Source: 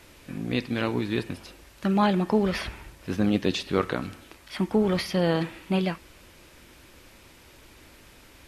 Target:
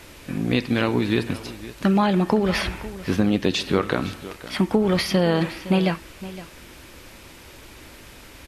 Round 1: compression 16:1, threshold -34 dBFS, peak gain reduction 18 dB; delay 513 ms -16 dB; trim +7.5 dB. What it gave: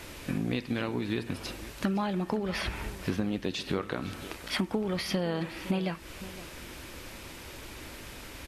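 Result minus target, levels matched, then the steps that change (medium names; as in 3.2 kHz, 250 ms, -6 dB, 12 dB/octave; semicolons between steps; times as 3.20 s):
compression: peak gain reduction +11 dB
change: compression 16:1, threshold -22 dBFS, peak gain reduction 7 dB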